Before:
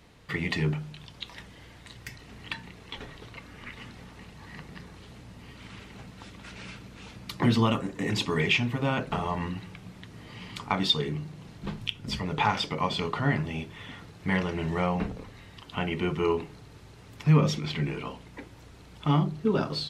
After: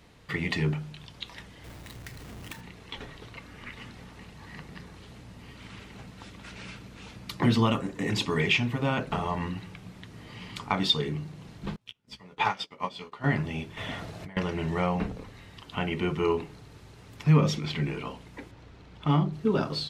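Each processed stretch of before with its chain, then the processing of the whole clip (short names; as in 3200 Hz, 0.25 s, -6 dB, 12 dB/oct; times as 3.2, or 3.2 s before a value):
1.64–2.61 half-waves squared off + compressor 2.5:1, threshold -41 dBFS
11.76–13.24 low shelf 190 Hz -9.5 dB + doubler 16 ms -4 dB + upward expander 2.5:1, over -41 dBFS
13.77–14.37 bell 650 Hz +11 dB 0.36 oct + negative-ratio compressor -38 dBFS
18.51–19.33 median filter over 5 samples + air absorption 54 m
whole clip: dry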